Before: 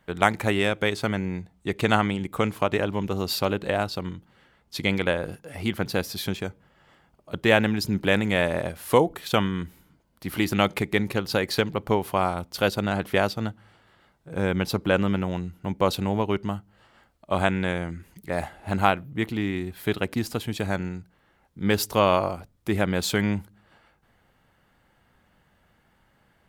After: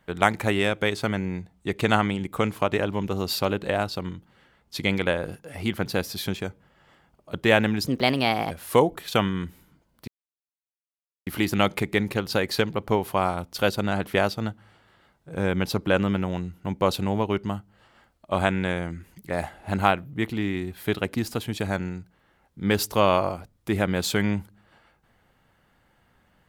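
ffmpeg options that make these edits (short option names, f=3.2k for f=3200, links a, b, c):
-filter_complex "[0:a]asplit=4[a][b][c][d];[a]atrim=end=7.874[e];[b]atrim=start=7.87:end=8.69,asetpts=PTS-STARTPTS,asetrate=56889,aresample=44100[f];[c]atrim=start=8.686:end=10.26,asetpts=PTS-STARTPTS,afade=t=out:st=1.57:d=0.004:c=hsin,apad=pad_dur=1.19[g];[d]atrim=start=10.26,asetpts=PTS-STARTPTS,afade=t=in:d=0.004:c=hsin[h];[e][f]acrossfade=d=0.004:c1=hsin:c2=hsin[i];[g][h]concat=n=2:v=0:a=1[j];[i][j]acrossfade=d=0.004:c1=hsin:c2=hsin"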